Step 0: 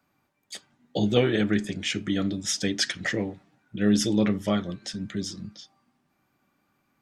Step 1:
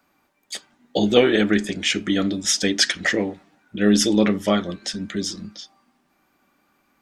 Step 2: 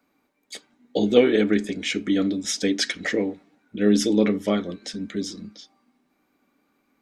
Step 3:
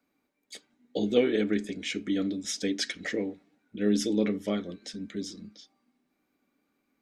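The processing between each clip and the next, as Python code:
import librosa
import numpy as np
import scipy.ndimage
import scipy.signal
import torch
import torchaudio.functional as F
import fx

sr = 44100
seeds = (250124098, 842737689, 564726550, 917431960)

y1 = fx.peak_eq(x, sr, hz=120.0, db=-14.5, octaves=0.83)
y1 = F.gain(torch.from_numpy(y1), 7.5).numpy()
y2 = fx.small_body(y1, sr, hz=(270.0, 440.0, 2200.0, 3900.0), ring_ms=30, db=9)
y2 = F.gain(torch.from_numpy(y2), -7.0).numpy()
y3 = fx.peak_eq(y2, sr, hz=1000.0, db=-4.0, octaves=1.1)
y3 = F.gain(torch.from_numpy(y3), -6.5).numpy()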